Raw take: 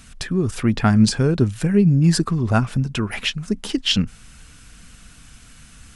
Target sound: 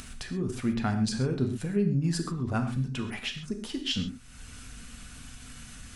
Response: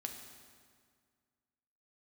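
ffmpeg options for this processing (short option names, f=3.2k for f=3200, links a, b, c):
-filter_complex "[0:a]acompressor=mode=upward:threshold=-22dB:ratio=2.5[a];[1:a]atrim=start_sample=2205,afade=t=out:st=0.19:d=0.01,atrim=end_sample=8820[b];[a][b]afir=irnorm=-1:irlink=0,volume=-8.5dB"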